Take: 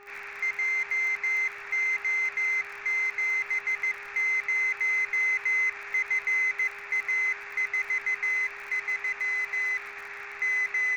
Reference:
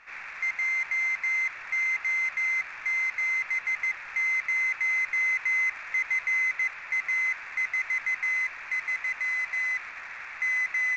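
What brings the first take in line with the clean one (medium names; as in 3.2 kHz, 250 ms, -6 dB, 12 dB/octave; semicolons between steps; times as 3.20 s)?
de-click; de-hum 405 Hz, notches 3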